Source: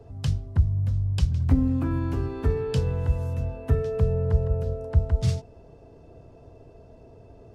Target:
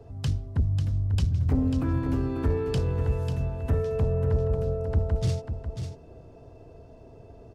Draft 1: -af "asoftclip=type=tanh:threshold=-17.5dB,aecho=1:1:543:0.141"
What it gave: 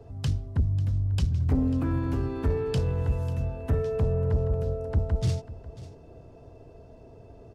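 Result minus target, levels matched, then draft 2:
echo-to-direct −9 dB
-af "asoftclip=type=tanh:threshold=-17.5dB,aecho=1:1:543:0.398"

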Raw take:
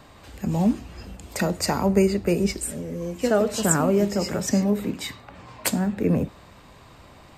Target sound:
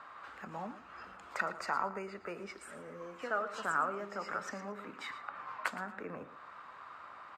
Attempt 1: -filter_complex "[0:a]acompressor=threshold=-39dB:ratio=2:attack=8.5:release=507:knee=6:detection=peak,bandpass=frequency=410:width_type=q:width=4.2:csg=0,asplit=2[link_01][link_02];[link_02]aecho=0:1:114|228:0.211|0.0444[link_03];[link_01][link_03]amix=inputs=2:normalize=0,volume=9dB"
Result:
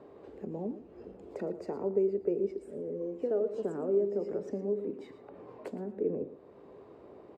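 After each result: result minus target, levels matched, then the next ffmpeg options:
1,000 Hz band −18.5 dB; downward compressor: peak gain reduction +4 dB
-filter_complex "[0:a]acompressor=threshold=-39dB:ratio=2:attack=8.5:release=507:knee=6:detection=peak,bandpass=frequency=1300:width_type=q:width=4.2:csg=0,asplit=2[link_01][link_02];[link_02]aecho=0:1:114|228:0.211|0.0444[link_03];[link_01][link_03]amix=inputs=2:normalize=0,volume=9dB"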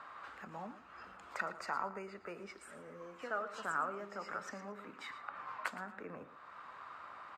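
downward compressor: peak gain reduction +4 dB
-filter_complex "[0:a]acompressor=threshold=-31dB:ratio=2:attack=8.5:release=507:knee=6:detection=peak,bandpass=frequency=1300:width_type=q:width=4.2:csg=0,asplit=2[link_01][link_02];[link_02]aecho=0:1:114|228:0.211|0.0444[link_03];[link_01][link_03]amix=inputs=2:normalize=0,volume=9dB"

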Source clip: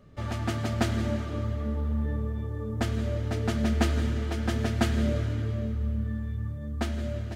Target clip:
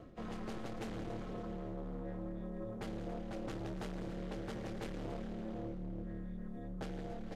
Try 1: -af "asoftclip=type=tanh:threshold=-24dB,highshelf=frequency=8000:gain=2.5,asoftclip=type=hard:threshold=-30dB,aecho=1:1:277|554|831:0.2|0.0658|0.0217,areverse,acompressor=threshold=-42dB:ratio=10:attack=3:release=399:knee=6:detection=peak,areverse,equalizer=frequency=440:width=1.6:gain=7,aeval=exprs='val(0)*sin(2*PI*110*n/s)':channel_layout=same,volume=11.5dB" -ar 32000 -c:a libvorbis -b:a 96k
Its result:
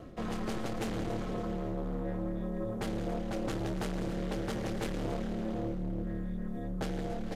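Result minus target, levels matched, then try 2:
downward compressor: peak gain reduction −7.5 dB; 8,000 Hz band +3.5 dB
-af "asoftclip=type=tanh:threshold=-24dB,highshelf=frequency=8000:gain=-6.5,asoftclip=type=hard:threshold=-30dB,aecho=1:1:277|554|831:0.2|0.0658|0.0217,areverse,acompressor=threshold=-50.5dB:ratio=10:attack=3:release=399:knee=6:detection=peak,areverse,equalizer=frequency=440:width=1.6:gain=7,aeval=exprs='val(0)*sin(2*PI*110*n/s)':channel_layout=same,volume=11.5dB" -ar 32000 -c:a libvorbis -b:a 96k

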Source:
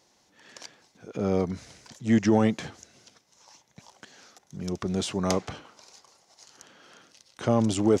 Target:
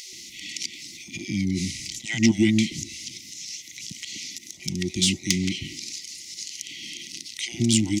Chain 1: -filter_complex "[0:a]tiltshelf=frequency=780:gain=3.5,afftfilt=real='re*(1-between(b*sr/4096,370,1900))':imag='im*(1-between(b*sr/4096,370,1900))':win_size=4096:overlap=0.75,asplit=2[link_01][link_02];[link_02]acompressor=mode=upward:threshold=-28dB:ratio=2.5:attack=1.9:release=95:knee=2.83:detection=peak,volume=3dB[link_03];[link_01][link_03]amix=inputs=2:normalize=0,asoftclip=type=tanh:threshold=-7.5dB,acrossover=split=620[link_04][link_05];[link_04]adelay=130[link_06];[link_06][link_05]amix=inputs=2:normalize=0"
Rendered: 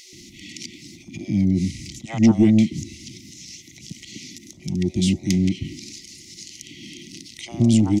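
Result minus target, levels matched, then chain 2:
1,000 Hz band +7.0 dB
-filter_complex "[0:a]tiltshelf=frequency=780:gain=-5,afftfilt=real='re*(1-between(b*sr/4096,370,1900))':imag='im*(1-between(b*sr/4096,370,1900))':win_size=4096:overlap=0.75,asplit=2[link_01][link_02];[link_02]acompressor=mode=upward:threshold=-28dB:ratio=2.5:attack=1.9:release=95:knee=2.83:detection=peak,volume=3dB[link_03];[link_01][link_03]amix=inputs=2:normalize=0,asoftclip=type=tanh:threshold=-7.5dB,acrossover=split=620[link_04][link_05];[link_04]adelay=130[link_06];[link_06][link_05]amix=inputs=2:normalize=0"

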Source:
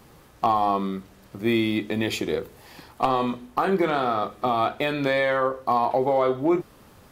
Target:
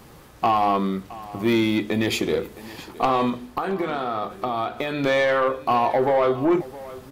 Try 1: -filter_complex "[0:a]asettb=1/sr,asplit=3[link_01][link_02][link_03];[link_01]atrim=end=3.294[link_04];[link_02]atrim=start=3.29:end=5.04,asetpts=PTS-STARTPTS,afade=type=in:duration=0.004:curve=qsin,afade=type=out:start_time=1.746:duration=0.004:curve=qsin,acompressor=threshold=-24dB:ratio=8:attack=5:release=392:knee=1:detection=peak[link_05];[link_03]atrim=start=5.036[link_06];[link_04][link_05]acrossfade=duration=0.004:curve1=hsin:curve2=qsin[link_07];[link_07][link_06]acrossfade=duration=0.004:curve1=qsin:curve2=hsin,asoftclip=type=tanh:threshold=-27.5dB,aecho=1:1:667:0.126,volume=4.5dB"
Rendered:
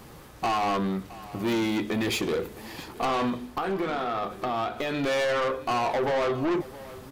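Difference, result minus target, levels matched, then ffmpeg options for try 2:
soft clipping: distortion +9 dB
-filter_complex "[0:a]asettb=1/sr,asplit=3[link_01][link_02][link_03];[link_01]atrim=end=3.294[link_04];[link_02]atrim=start=3.29:end=5.04,asetpts=PTS-STARTPTS,afade=type=in:duration=0.004:curve=qsin,afade=type=out:start_time=1.746:duration=0.004:curve=qsin,acompressor=threshold=-24dB:ratio=8:attack=5:release=392:knee=1:detection=peak[link_05];[link_03]atrim=start=5.036[link_06];[link_04][link_05]acrossfade=duration=0.004:curve1=hsin:curve2=qsin[link_07];[link_07][link_06]acrossfade=duration=0.004:curve1=qsin:curve2=hsin,asoftclip=type=tanh:threshold=-17.5dB,aecho=1:1:667:0.126,volume=4.5dB"

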